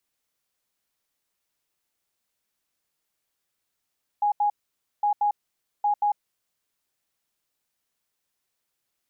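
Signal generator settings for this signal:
beeps in groups sine 827 Hz, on 0.10 s, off 0.08 s, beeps 2, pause 0.53 s, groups 3, −19 dBFS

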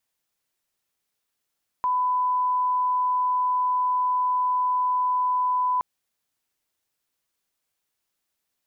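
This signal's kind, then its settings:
line-up tone −20 dBFS 3.97 s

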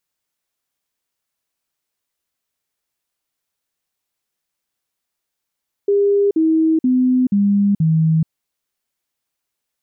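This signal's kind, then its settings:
stepped sweep 403 Hz down, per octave 3, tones 5, 0.43 s, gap 0.05 s −11.5 dBFS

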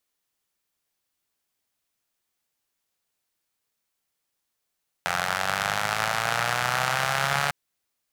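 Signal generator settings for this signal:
pulse-train model of a four-cylinder engine, changing speed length 2.45 s, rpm 2,600, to 4,300, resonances 150/780/1,300 Hz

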